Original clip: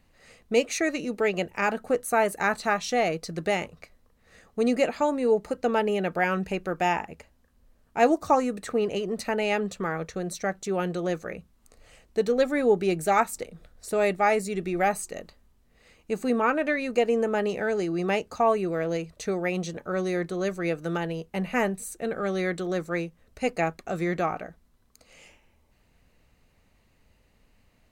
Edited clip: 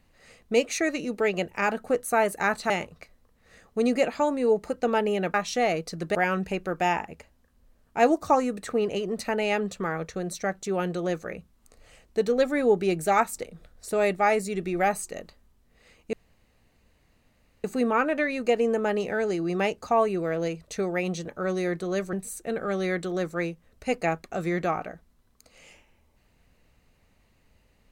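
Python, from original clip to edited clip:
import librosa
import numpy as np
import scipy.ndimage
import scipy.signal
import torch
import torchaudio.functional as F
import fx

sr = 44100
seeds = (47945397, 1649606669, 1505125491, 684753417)

y = fx.edit(x, sr, fx.move(start_s=2.7, length_s=0.81, to_s=6.15),
    fx.insert_room_tone(at_s=16.13, length_s=1.51),
    fx.cut(start_s=20.62, length_s=1.06), tone=tone)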